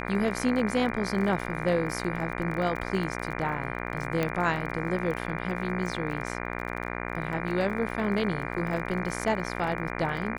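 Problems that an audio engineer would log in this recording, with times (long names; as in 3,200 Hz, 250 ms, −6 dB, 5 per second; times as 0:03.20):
mains buzz 60 Hz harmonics 40 −34 dBFS
surface crackle 31 per second −34 dBFS
0:04.23: click −14 dBFS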